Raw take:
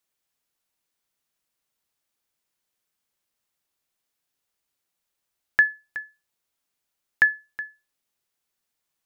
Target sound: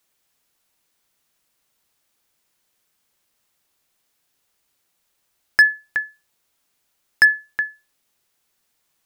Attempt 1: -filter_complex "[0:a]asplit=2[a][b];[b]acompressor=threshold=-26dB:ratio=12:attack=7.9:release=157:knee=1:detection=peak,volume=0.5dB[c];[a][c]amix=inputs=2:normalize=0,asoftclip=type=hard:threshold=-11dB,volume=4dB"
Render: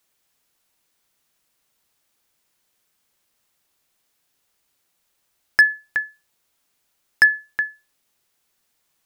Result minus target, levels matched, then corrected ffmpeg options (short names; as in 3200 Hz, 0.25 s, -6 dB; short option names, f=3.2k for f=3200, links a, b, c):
compressor: peak gain reduction +6 dB
-filter_complex "[0:a]asplit=2[a][b];[b]acompressor=threshold=-19.5dB:ratio=12:attack=7.9:release=157:knee=1:detection=peak,volume=0.5dB[c];[a][c]amix=inputs=2:normalize=0,asoftclip=type=hard:threshold=-11dB,volume=4dB"